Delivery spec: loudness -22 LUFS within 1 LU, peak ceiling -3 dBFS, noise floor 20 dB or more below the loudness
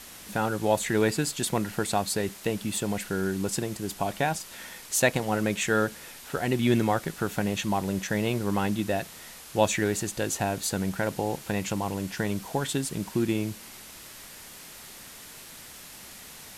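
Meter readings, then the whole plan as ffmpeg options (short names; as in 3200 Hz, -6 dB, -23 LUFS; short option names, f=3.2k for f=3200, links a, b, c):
noise floor -46 dBFS; noise floor target -48 dBFS; loudness -28.0 LUFS; peak -7.5 dBFS; loudness target -22.0 LUFS
-> -af "afftdn=nr=6:nf=-46"
-af "volume=6dB,alimiter=limit=-3dB:level=0:latency=1"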